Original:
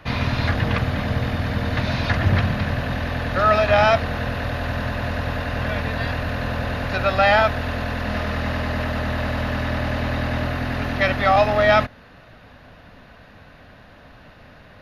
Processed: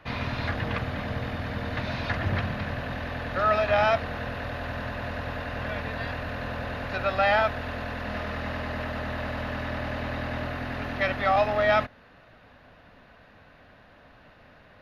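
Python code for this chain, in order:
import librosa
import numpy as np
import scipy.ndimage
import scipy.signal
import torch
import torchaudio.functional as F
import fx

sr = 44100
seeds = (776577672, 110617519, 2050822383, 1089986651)

y = fx.bass_treble(x, sr, bass_db=-4, treble_db=-5)
y = F.gain(torch.from_numpy(y), -6.0).numpy()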